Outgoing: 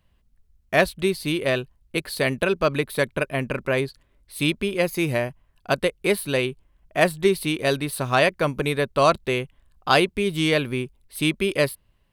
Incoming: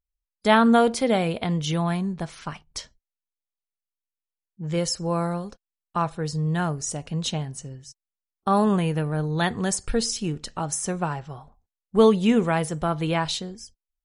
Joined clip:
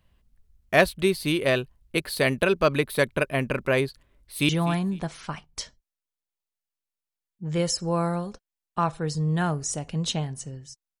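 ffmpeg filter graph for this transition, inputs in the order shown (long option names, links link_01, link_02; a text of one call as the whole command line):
ffmpeg -i cue0.wav -i cue1.wav -filter_complex "[0:a]apad=whole_dur=11,atrim=end=11,atrim=end=4.492[link_01];[1:a]atrim=start=1.668:end=8.18[link_02];[link_01][link_02]acrossfade=duration=0.004:curve1=hsin:curve2=hsin,asplit=2[link_03][link_04];[link_04]afade=type=in:start_time=4.05:duration=0.01,afade=type=out:start_time=4.49:duration=0.01,aecho=0:1:250|500:0.188365|0.037673[link_05];[link_03][link_05]amix=inputs=2:normalize=0" out.wav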